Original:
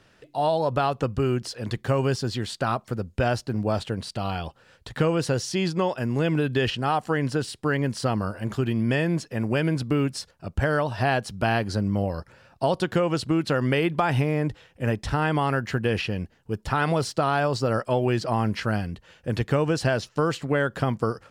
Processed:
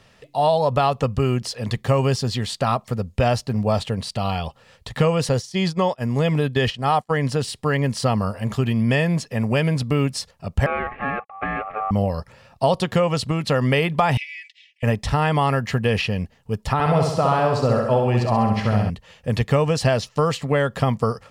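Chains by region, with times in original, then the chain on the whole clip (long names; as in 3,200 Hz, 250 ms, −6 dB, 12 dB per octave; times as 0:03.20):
0:05.29–0:07.29: notch filter 2,700 Hz + downward expander −25 dBFS
0:10.66–0:11.91: gap after every zero crossing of 0.26 ms + elliptic band-pass filter 150–1,500 Hz, stop band 50 dB + ring modulation 970 Hz
0:14.17–0:14.83: Butterworth high-pass 2,000 Hz 72 dB per octave + high-frequency loss of the air 140 metres + comb filter 3.5 ms, depth 74%
0:16.73–0:18.90: high-shelf EQ 2,000 Hz −9 dB + repeating echo 66 ms, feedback 56%, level −4 dB
whole clip: parametric band 330 Hz −14 dB 0.29 octaves; notch filter 1,500 Hz, Q 5.5; level +5.5 dB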